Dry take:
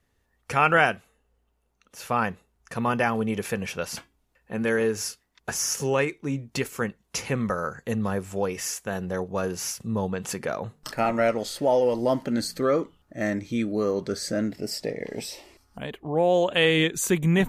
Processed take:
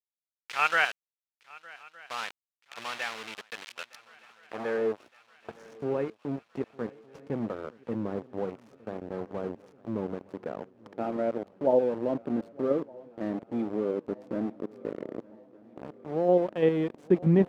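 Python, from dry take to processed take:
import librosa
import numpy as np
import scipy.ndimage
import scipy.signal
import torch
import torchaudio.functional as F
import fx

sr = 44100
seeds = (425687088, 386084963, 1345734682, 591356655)

p1 = fx.high_shelf(x, sr, hz=3600.0, db=-9.0)
p2 = fx.level_steps(p1, sr, step_db=20)
p3 = p1 + F.gain(torch.from_numpy(p2), 2.0).numpy()
p4 = np.where(np.abs(p3) >= 10.0 ** (-24.0 / 20.0), p3, 0.0)
p5 = fx.filter_sweep_bandpass(p4, sr, from_hz=3000.0, to_hz=310.0, start_s=3.91, end_s=5.14, q=0.94)
p6 = fx.echo_swing(p5, sr, ms=1215, ratio=3, feedback_pct=57, wet_db=-23.0)
y = F.gain(torch.from_numpy(p6), -3.5).numpy()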